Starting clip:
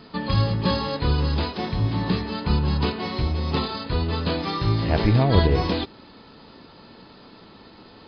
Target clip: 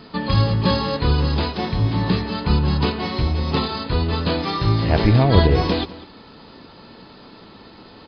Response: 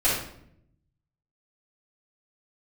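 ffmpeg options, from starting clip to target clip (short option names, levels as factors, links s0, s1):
-filter_complex "[0:a]asplit=2[s0][s1];[s1]adelay=198.3,volume=0.141,highshelf=f=4000:g=-4.46[s2];[s0][s2]amix=inputs=2:normalize=0,volume=1.5"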